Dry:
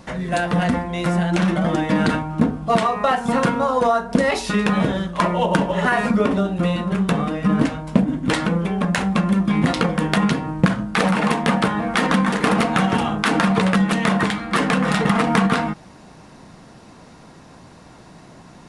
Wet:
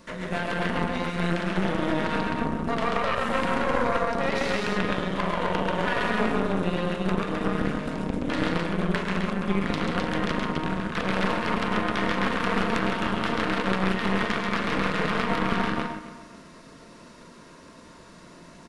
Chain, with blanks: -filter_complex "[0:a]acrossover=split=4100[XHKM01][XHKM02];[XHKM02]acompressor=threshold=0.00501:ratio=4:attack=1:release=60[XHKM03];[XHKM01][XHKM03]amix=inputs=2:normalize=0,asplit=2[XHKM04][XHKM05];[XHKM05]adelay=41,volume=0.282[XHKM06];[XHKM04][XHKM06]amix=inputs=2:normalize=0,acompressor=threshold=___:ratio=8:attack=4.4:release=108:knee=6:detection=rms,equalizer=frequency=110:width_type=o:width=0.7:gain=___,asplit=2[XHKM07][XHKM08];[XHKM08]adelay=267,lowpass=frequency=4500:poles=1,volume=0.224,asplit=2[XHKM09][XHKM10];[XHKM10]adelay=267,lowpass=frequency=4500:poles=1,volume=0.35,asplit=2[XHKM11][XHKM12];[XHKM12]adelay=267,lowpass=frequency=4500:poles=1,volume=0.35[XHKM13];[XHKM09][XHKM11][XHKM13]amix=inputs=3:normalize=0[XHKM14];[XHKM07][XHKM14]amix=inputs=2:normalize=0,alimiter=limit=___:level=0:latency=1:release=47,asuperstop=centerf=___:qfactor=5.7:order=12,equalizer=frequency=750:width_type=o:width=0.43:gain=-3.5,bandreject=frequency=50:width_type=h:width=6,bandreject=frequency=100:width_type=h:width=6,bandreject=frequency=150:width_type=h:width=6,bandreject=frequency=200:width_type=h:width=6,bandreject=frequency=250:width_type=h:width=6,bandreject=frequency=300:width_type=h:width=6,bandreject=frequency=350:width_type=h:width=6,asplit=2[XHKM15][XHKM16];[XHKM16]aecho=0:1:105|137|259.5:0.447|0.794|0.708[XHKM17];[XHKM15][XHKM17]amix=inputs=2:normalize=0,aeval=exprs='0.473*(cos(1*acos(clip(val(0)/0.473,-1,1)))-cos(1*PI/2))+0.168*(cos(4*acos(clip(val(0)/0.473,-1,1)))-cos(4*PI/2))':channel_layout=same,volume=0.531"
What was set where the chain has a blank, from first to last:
0.126, -13, 0.251, 790